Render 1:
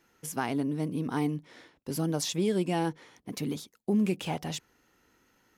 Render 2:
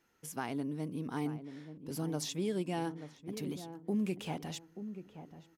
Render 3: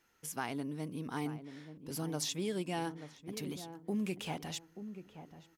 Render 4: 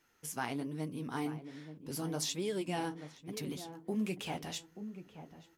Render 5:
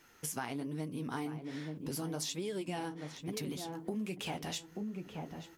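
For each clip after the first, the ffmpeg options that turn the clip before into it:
ffmpeg -i in.wav -filter_complex "[0:a]asplit=2[link_01][link_02];[link_02]adelay=882,lowpass=frequency=870:poles=1,volume=-10dB,asplit=2[link_03][link_04];[link_04]adelay=882,lowpass=frequency=870:poles=1,volume=0.34,asplit=2[link_05][link_06];[link_06]adelay=882,lowpass=frequency=870:poles=1,volume=0.34,asplit=2[link_07][link_08];[link_08]adelay=882,lowpass=frequency=870:poles=1,volume=0.34[link_09];[link_01][link_03][link_05][link_07][link_09]amix=inputs=5:normalize=0,volume=-7dB" out.wav
ffmpeg -i in.wav -af "equalizer=frequency=250:width=0.35:gain=-5.5,volume=3dB" out.wav
ffmpeg -i in.wav -af "flanger=delay=6.6:depth=9.8:regen=-43:speed=1.2:shape=sinusoidal,volume=4.5dB" out.wav
ffmpeg -i in.wav -af "acompressor=threshold=-47dB:ratio=4,volume=9.5dB" out.wav

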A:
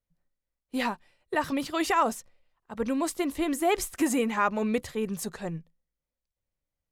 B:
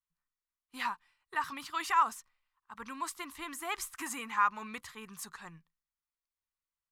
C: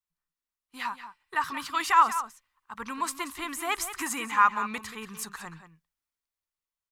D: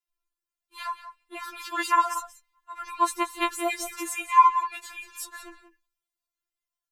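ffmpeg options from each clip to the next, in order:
ffmpeg -i in.wav -af "lowshelf=frequency=780:width_type=q:width=3:gain=-11,volume=-6.5dB" out.wav
ffmpeg -i in.wav -filter_complex "[0:a]dynaudnorm=framelen=210:gausssize=11:maxgain=8dB,asplit=2[link_01][link_02];[link_02]adelay=180.8,volume=-11dB,highshelf=frequency=4000:gain=-4.07[link_03];[link_01][link_03]amix=inputs=2:normalize=0,volume=-1dB" out.wav
ffmpeg -i in.wav -af "afftfilt=real='re*4*eq(mod(b,16),0)':imag='im*4*eq(mod(b,16),0)':win_size=2048:overlap=0.75,volume=2.5dB" out.wav

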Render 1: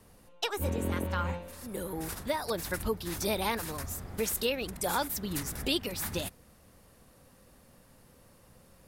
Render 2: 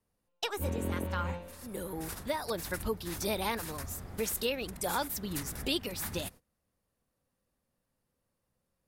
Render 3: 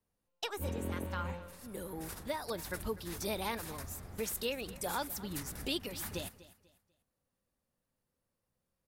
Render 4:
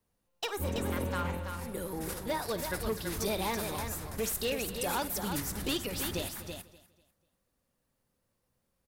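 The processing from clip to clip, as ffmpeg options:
ffmpeg -i in.wav -af "agate=range=-21dB:threshold=-47dB:ratio=16:detection=peak,volume=-2dB" out.wav
ffmpeg -i in.wav -af "aecho=1:1:246|492|738:0.126|0.0378|0.0113,volume=-4dB" out.wav
ffmpeg -i in.wav -af "volume=32.5dB,asoftclip=hard,volume=-32.5dB,aecho=1:1:54|331:0.178|0.473,volume=5dB" out.wav

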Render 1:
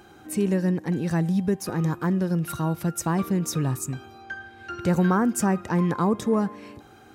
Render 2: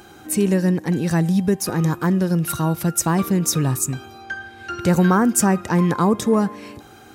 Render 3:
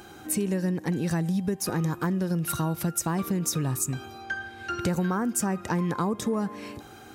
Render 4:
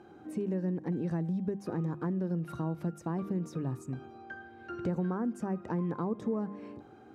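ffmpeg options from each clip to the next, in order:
ffmpeg -i in.wav -af "highshelf=frequency=3800:gain=6.5,volume=5dB" out.wav
ffmpeg -i in.wav -af "acompressor=threshold=-22dB:ratio=6,volume=-2dB" out.wav
ffmpeg -i in.wav -af "bandpass=frequency=300:width_type=q:width=0.54:csg=0,bandreject=frequency=50:width_type=h:width=6,bandreject=frequency=100:width_type=h:width=6,bandreject=frequency=150:width_type=h:width=6,bandreject=frequency=200:width_type=h:width=6,volume=-4dB" out.wav

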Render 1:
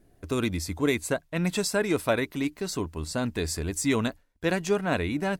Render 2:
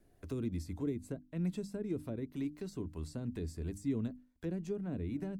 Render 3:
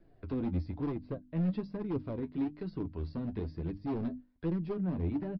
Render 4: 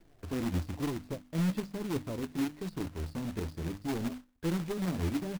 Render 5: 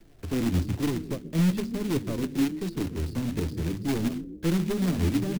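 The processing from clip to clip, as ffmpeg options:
ffmpeg -i in.wav -filter_complex "[0:a]acrossover=split=510[link_01][link_02];[link_02]acompressor=threshold=-39dB:ratio=6[link_03];[link_01][link_03]amix=inputs=2:normalize=0,bandreject=frequency=50:width_type=h:width=6,bandreject=frequency=100:width_type=h:width=6,bandreject=frequency=150:width_type=h:width=6,bandreject=frequency=200:width_type=h:width=6,bandreject=frequency=250:width_type=h:width=6,bandreject=frequency=300:width_type=h:width=6,acrossover=split=380[link_04][link_05];[link_05]acompressor=threshold=-49dB:ratio=2.5[link_06];[link_04][link_06]amix=inputs=2:normalize=0,volume=-6.5dB" out.wav
ffmpeg -i in.wav -af "highshelf=frequency=2600:gain=-10.5,aresample=11025,asoftclip=type=hard:threshold=-34dB,aresample=44100,flanger=delay=5.9:depth=6.4:regen=40:speed=1.1:shape=sinusoidal,volume=8.5dB" out.wav
ffmpeg -i in.wav -af "acrusher=bits=2:mode=log:mix=0:aa=0.000001" out.wav
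ffmpeg -i in.wav -filter_complex "[0:a]acrossover=split=330|470|1900[link_01][link_02][link_03][link_04];[link_01]asplit=7[link_05][link_06][link_07][link_08][link_09][link_10][link_11];[link_06]adelay=138,afreqshift=30,volume=-8.5dB[link_12];[link_07]adelay=276,afreqshift=60,volume=-14.5dB[link_13];[link_08]adelay=414,afreqshift=90,volume=-20.5dB[link_14];[link_09]adelay=552,afreqshift=120,volume=-26.6dB[link_15];[link_10]adelay=690,afreqshift=150,volume=-32.6dB[link_16];[link_11]adelay=828,afreqshift=180,volume=-38.6dB[link_17];[link_05][link_12][link_13][link_14][link_15][link_16][link_17]amix=inputs=7:normalize=0[link_18];[link_03]aeval=exprs='max(val(0),0)':channel_layout=same[link_19];[link_18][link_02][link_19][link_04]amix=inputs=4:normalize=0,volume=7dB" out.wav

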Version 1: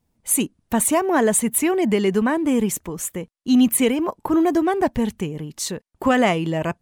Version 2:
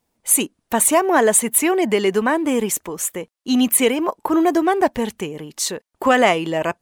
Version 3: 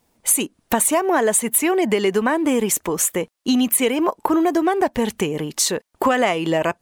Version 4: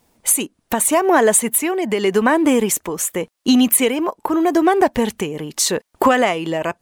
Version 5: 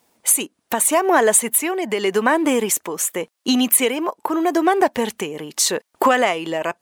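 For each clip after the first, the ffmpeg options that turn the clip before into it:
ffmpeg -i in.wav -af "bass=frequency=250:gain=-13,treble=frequency=4000:gain=0,volume=4.5dB" out.wav
ffmpeg -i in.wav -af "acompressor=threshold=-24dB:ratio=4,volume=7.5dB" out.wav
ffmpeg -i in.wav -af "tremolo=f=0.84:d=0.55,volume=4.5dB" out.wav
ffmpeg -i in.wav -af "highpass=frequency=360:poles=1" out.wav

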